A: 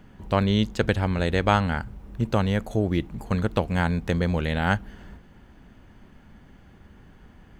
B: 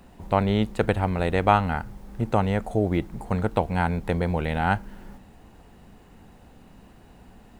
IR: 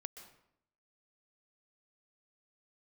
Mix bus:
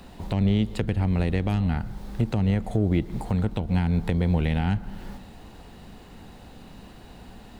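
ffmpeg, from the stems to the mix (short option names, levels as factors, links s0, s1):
-filter_complex "[0:a]aeval=exprs='0.596*(cos(1*acos(clip(val(0)/0.596,-1,1)))-cos(1*PI/2))+0.106*(cos(5*acos(clip(val(0)/0.596,-1,1)))-cos(5*PI/2))+0.0944*(cos(7*acos(clip(val(0)/0.596,-1,1)))-cos(7*PI/2))':c=same,volume=0.168[s0];[1:a]acrossover=split=330[s1][s2];[s2]acompressor=threshold=0.0141:ratio=3[s3];[s1][s3]amix=inputs=2:normalize=0,volume=1.33,asplit=2[s4][s5];[s5]volume=0.531[s6];[2:a]atrim=start_sample=2205[s7];[s6][s7]afir=irnorm=-1:irlink=0[s8];[s0][s4][s8]amix=inputs=3:normalize=0,equalizer=f=4000:w=1.7:g=7.5,alimiter=limit=0.224:level=0:latency=1:release=168"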